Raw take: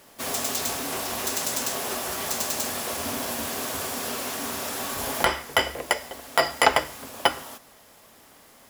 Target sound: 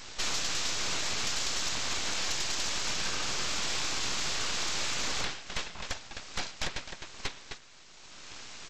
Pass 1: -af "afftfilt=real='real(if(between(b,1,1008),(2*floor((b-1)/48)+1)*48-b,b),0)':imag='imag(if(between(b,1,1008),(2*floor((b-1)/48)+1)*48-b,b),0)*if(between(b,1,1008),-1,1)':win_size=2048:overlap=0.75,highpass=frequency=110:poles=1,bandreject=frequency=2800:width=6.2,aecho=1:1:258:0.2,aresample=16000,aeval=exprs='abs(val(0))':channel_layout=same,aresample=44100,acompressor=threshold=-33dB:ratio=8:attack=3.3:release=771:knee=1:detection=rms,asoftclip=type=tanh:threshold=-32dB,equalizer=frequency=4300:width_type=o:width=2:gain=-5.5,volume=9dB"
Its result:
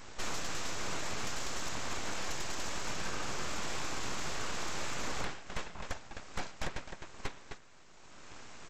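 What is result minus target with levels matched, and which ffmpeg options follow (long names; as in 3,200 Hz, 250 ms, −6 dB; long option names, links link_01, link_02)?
4,000 Hz band −3.5 dB
-af "afftfilt=real='real(if(between(b,1,1008),(2*floor((b-1)/48)+1)*48-b,b),0)':imag='imag(if(between(b,1,1008),(2*floor((b-1)/48)+1)*48-b,b),0)*if(between(b,1,1008),-1,1)':win_size=2048:overlap=0.75,highpass=frequency=110:poles=1,bandreject=frequency=2800:width=6.2,aecho=1:1:258:0.2,aresample=16000,aeval=exprs='abs(val(0))':channel_layout=same,aresample=44100,acompressor=threshold=-33dB:ratio=8:attack=3.3:release=771:knee=1:detection=rms,asoftclip=type=tanh:threshold=-32dB,equalizer=frequency=4300:width_type=o:width=2:gain=6,volume=9dB"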